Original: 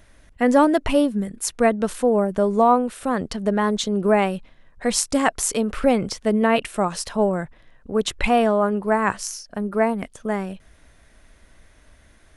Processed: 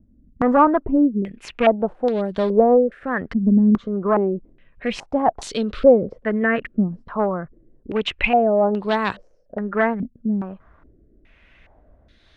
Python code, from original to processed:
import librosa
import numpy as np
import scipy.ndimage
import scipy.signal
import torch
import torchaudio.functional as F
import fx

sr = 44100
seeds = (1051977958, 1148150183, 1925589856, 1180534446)

y = fx.rotary(x, sr, hz=1.1)
y = fx.clip_asym(y, sr, top_db=-18.5, bottom_db=-9.5)
y = fx.filter_held_lowpass(y, sr, hz=2.4, low_hz=240.0, high_hz=3900.0)